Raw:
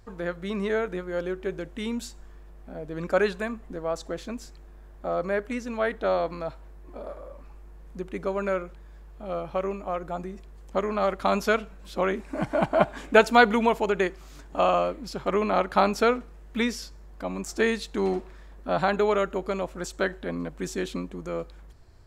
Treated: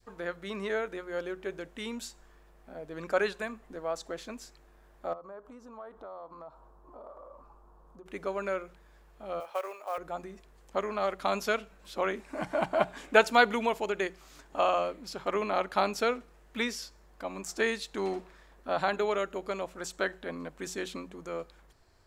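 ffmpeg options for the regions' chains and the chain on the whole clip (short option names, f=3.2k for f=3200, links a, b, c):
-filter_complex "[0:a]asettb=1/sr,asplit=3[a][b][c];[a]atrim=end=5.134[d];[b]atrim=start=5.13:end=8.06,asetpts=PTS-STARTPTS,afade=t=in:d=0.004:c=qsin,afade=t=out:st=2.926:d=0.004:c=qsin,highshelf=f=1.5k:t=q:w=3:g=-10,acompressor=threshold=-40dB:ratio=4:attack=3.2:release=140:knee=1:detection=peak[e];[c]atrim=start=8.056[f];[d][e]acrossfade=d=0.004:c1=hsin:c2=qsin[g];[g][f]acrossfade=d=0.004:c1=qsin:c2=hsin,asettb=1/sr,asplit=3[h][i][j];[h]atrim=end=9.404[k];[i]atrim=start=9.4:end=9.98,asetpts=PTS-STARTPTS,afade=t=in:d=0.004:c=qsin,afade=t=out:st=0.576:d=0.004:c=qsin,highpass=f=480:w=0.5412,highpass=f=480:w=1.3066,acrusher=bits=6:mode=log:mix=0:aa=0.000001[l];[j]atrim=start=9.976[m];[k][l]acrossfade=d=0.004:c1=hsin:c2=qsin[n];[n][m]acrossfade=d=0.004:c1=qsin:c2=hsin,lowshelf=f=300:g=-11,bandreject=f=60:t=h:w=6,bandreject=f=120:t=h:w=6,bandreject=f=180:t=h:w=6,adynamicequalizer=threshold=0.0158:dfrequency=1100:dqfactor=0.76:tfrequency=1100:tqfactor=0.76:attack=5:release=100:ratio=0.375:range=2.5:mode=cutabove:tftype=bell,volume=-2dB"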